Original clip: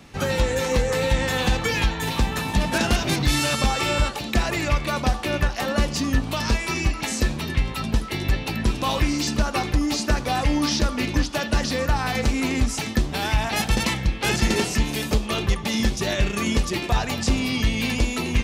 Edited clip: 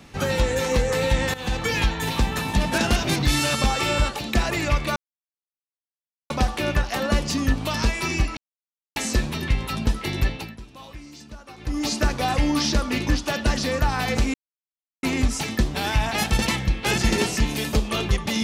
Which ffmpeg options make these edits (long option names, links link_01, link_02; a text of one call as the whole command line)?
ffmpeg -i in.wav -filter_complex "[0:a]asplit=7[link_01][link_02][link_03][link_04][link_05][link_06][link_07];[link_01]atrim=end=1.34,asetpts=PTS-STARTPTS,afade=type=out:start_time=1.336:duration=0.004:curve=hsin:silence=0.141254[link_08];[link_02]atrim=start=1.34:end=4.96,asetpts=PTS-STARTPTS,afade=type=in:duration=0.48:curve=qsin:silence=0.141254,afade=type=out:start_time=3.616:duration=0.004:curve=hsin,apad=pad_dur=1.34[link_09];[link_03]atrim=start=4.96:end=7.03,asetpts=PTS-STARTPTS,afade=type=in:duration=0.004:curve=hsin,afade=type=out:start_time=2.066:duration=0.004:curve=hsin,apad=pad_dur=0.59[link_10];[link_04]atrim=start=7.03:end=8.63,asetpts=PTS-STARTPTS,afade=type=in:duration=0.004:curve=hsin,afade=type=out:start_time=1.28:duration=0.32:silence=0.112202[link_11];[link_05]atrim=start=8.63:end=9.64,asetpts=PTS-STARTPTS,volume=-19dB[link_12];[link_06]atrim=start=9.64:end=12.41,asetpts=PTS-STARTPTS,afade=type=in:duration=0.32:silence=0.112202,afade=type=out:start_time=2.766:duration=0.004:curve=hsin,apad=pad_dur=0.69[link_13];[link_07]atrim=start=12.41,asetpts=PTS-STARTPTS,afade=type=in:duration=0.004:curve=hsin[link_14];[link_08][link_09][link_10][link_11][link_12][link_13][link_14]concat=n=7:v=0:a=1" out.wav